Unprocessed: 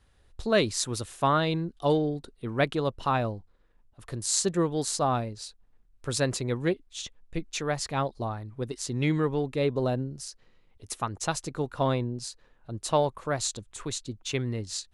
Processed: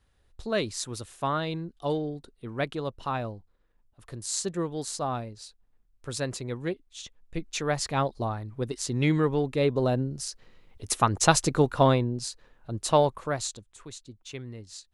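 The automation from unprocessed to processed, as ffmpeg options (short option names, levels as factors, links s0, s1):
-af "volume=3.16,afade=t=in:st=7.02:d=0.73:silence=0.473151,afade=t=in:st=9.87:d=1.59:silence=0.398107,afade=t=out:st=11.46:d=0.56:silence=0.446684,afade=t=out:st=13.05:d=0.64:silence=0.237137"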